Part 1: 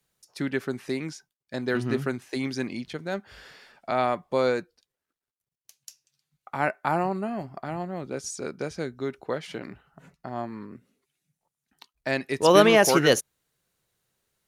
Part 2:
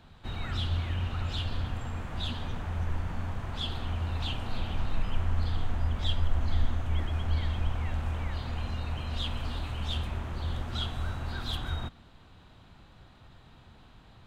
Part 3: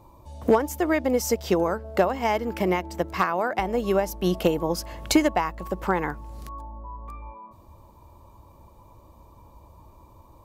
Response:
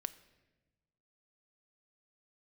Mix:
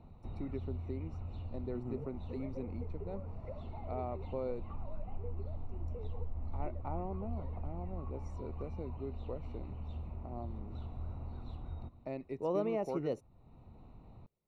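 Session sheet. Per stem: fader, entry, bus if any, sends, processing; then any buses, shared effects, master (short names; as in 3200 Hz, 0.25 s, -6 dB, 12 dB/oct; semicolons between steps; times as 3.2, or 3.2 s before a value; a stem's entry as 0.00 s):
-5.0 dB, 0.00 s, no send, dry
-1.5 dB, 0.00 s, send -7.5 dB, auto duck -8 dB, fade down 0.65 s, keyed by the first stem
-7.0 dB, 1.50 s, no send, sine-wave speech; compressor, threshold -29 dBFS, peak gain reduction 16 dB; ensemble effect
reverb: on, RT60 1.2 s, pre-delay 4 ms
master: running mean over 27 samples; compressor 1.5:1, threshold -48 dBFS, peak gain reduction 10.5 dB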